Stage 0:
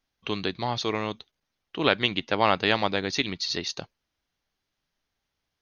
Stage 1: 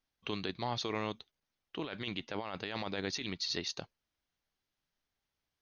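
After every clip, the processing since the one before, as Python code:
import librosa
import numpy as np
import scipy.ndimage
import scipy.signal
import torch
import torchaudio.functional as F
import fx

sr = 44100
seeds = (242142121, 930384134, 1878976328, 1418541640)

y = fx.over_compress(x, sr, threshold_db=-28.0, ratio=-1.0)
y = y * 10.0 ** (-9.0 / 20.0)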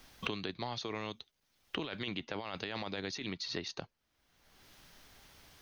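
y = fx.band_squash(x, sr, depth_pct=100)
y = y * 10.0 ** (-2.0 / 20.0)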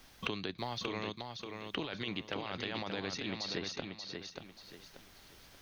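y = fx.echo_feedback(x, sr, ms=584, feedback_pct=32, wet_db=-5.5)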